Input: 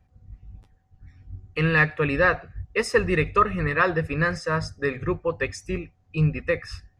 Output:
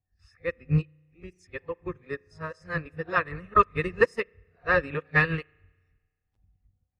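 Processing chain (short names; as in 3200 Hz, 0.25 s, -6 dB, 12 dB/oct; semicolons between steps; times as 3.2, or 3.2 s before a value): whole clip reversed; spring tank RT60 1.5 s, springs 33 ms, chirp 65 ms, DRR 15.5 dB; upward expander 2.5:1, over -30 dBFS; gain +1 dB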